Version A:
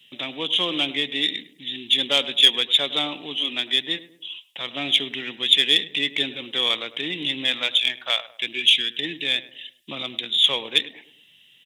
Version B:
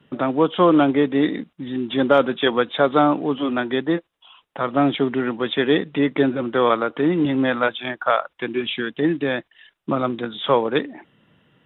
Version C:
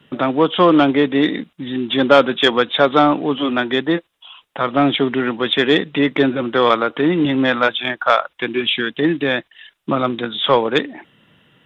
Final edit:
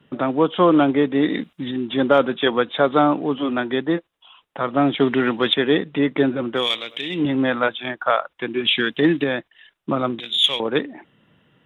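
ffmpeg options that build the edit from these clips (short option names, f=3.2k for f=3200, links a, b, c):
-filter_complex "[2:a]asplit=3[a][b][c];[0:a]asplit=2[d][e];[1:a]asplit=6[f][g][h][i][j][k];[f]atrim=end=1.302[l];[a]atrim=start=1.298:end=1.712[m];[g]atrim=start=1.708:end=5.002[n];[b]atrim=start=4.998:end=5.542[o];[h]atrim=start=5.538:end=6.68[p];[d]atrim=start=6.52:end=7.25[q];[i]atrim=start=7.09:end=8.652[r];[c]atrim=start=8.648:end=9.242[s];[j]atrim=start=9.238:end=10.202[t];[e]atrim=start=10.198:end=10.602[u];[k]atrim=start=10.598[v];[l][m]acrossfade=d=0.004:c1=hsin:c2=hsin[w];[w][n]acrossfade=d=0.004:c1=hsin:c2=hsin[x];[x][o]acrossfade=d=0.004:c1=hsin:c2=hsin[y];[y][p]acrossfade=d=0.004:c1=hsin:c2=hsin[z];[z][q]acrossfade=d=0.16:c1=tri:c2=tri[aa];[aa][r]acrossfade=d=0.16:c1=tri:c2=tri[ab];[ab][s]acrossfade=d=0.004:c1=hsin:c2=hsin[ac];[ac][t]acrossfade=d=0.004:c1=hsin:c2=hsin[ad];[ad][u]acrossfade=d=0.004:c1=hsin:c2=hsin[ae];[ae][v]acrossfade=d=0.004:c1=hsin:c2=hsin"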